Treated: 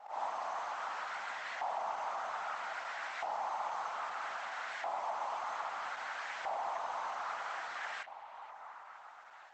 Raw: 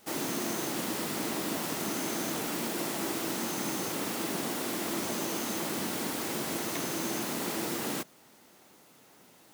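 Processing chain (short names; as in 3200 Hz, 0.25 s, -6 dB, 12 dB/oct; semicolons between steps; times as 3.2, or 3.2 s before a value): resonant low shelf 500 Hz -12 dB, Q 3; auto swell 0.208 s; compressor 6:1, threshold -36 dBFS, peak gain reduction 7 dB; soft clip -35 dBFS, distortion -16 dB; on a send: delay with a stepping band-pass 0.476 s, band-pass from 2800 Hz, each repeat -0.7 oct, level -8.5 dB; on the sum: LFO band-pass saw up 0.62 Hz 830–1800 Hz; gain +10 dB; Opus 12 kbps 48000 Hz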